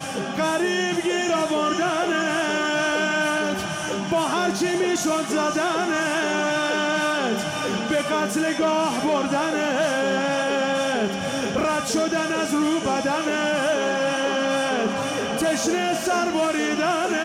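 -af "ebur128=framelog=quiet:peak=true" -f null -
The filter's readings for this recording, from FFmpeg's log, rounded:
Integrated loudness:
  I:         -22.5 LUFS
  Threshold: -32.5 LUFS
Loudness range:
  LRA:         0.5 LU
  Threshold: -42.5 LUFS
  LRA low:   -22.7 LUFS
  LRA high:  -22.1 LUFS
True peak:
  Peak:      -12.7 dBFS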